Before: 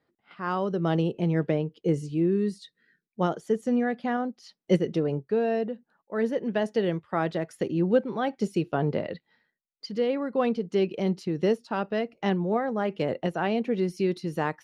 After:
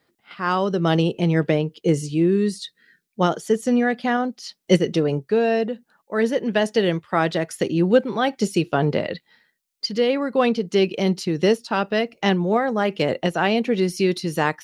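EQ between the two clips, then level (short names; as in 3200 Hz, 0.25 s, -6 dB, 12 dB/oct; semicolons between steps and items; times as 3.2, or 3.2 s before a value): high shelf 2200 Hz +10.5 dB; +5.5 dB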